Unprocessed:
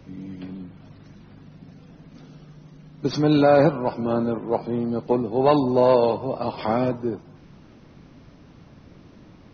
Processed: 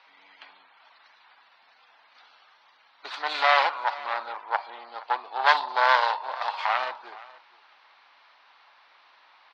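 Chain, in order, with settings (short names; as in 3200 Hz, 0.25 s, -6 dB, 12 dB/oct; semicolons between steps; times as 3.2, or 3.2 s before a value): tracing distortion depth 0.4 ms; Chebyshev band-pass 860–4300 Hz, order 3; on a send: echo 0.47 s -20 dB; on the sum: gain +4 dB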